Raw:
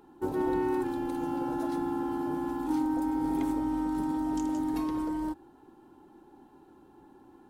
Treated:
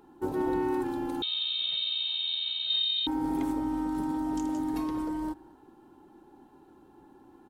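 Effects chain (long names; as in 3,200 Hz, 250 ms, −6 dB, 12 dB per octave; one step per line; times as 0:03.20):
slap from a distant wall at 38 metres, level −23 dB
0:01.22–0:03.07: voice inversion scrambler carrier 4,000 Hz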